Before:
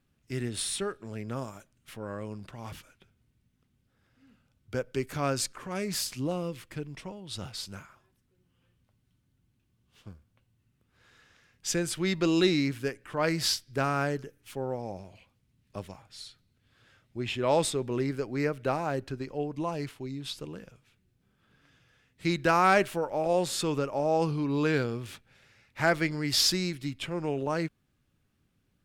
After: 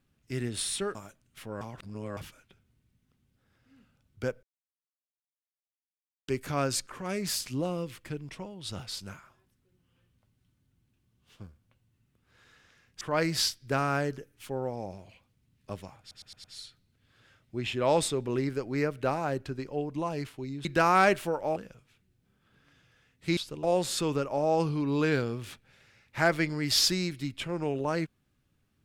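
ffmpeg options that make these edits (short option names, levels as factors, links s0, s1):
-filter_complex "[0:a]asplit=14[s0][s1][s2][s3][s4][s5][s6][s7][s8][s9][s10][s11][s12][s13];[s0]atrim=end=0.952[s14];[s1]atrim=start=1.458:end=2.122[s15];[s2]atrim=start=2.118:end=2.682,asetpts=PTS-STARTPTS,areverse[s16];[s3]atrim=start=2.678:end=4.94,asetpts=PTS-STARTPTS,afade=t=out:st=2.258:d=0.004:c=hsin,apad=pad_dur=1.85[s17];[s4]atrim=start=4.94:end=11.672,asetpts=PTS-STARTPTS,afade=t=in:d=0.004:c=hsin[s18];[s5]atrim=start=13.068:end=16.172[s19];[s6]atrim=start=16.058:end=16.172[s20];[s7]atrim=start=16.058:end=16.172[s21];[s8]atrim=start=16.058:end=16.172[s22];[s9]atrim=start=16.058:end=20.272[s23];[s10]atrim=start=22.338:end=23.252[s24];[s11]atrim=start=20.528:end=22.342[s25];[s12]atrim=start=20.268:end=20.532[s26];[s13]atrim=start=23.248[s27];[s14][s15]acrossfade=d=0.004:c1=hsin:c2=hsin[s28];[s28][s16]acrossfade=d=0.004:c1=hsin:c2=hsin[s29];[s17][s18]concat=n=2:v=0:a=1[s30];[s29][s30]acrossfade=d=0.004:c1=hsin:c2=hsin[s31];[s31][s19]acrossfade=d=0.004:c1=hsin:c2=hsin[s32];[s32][s20]acrossfade=d=0.004:c1=hsin:c2=hsin[s33];[s33][s21]acrossfade=d=0.004:c1=hsin:c2=hsin[s34];[s34][s22]acrossfade=d=0.004:c1=hsin:c2=hsin[s35];[s35][s23]acrossfade=d=0.004:c1=hsin:c2=hsin[s36];[s36][s24]acrossfade=d=0.004:c1=hsin:c2=hsin[s37];[s37][s25]acrossfade=d=0.004:c1=hsin:c2=hsin[s38];[s38][s26]acrossfade=d=0.004:c1=hsin:c2=hsin[s39];[s39][s27]acrossfade=d=0.004:c1=hsin:c2=hsin"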